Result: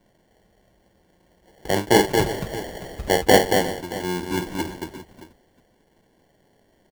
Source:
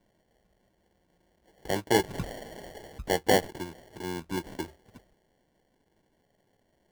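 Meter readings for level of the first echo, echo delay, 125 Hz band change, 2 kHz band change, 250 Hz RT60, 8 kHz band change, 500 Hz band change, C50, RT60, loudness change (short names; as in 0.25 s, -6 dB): -7.5 dB, 50 ms, +9.0 dB, +9.0 dB, none, +9.0 dB, +9.0 dB, none, none, +8.5 dB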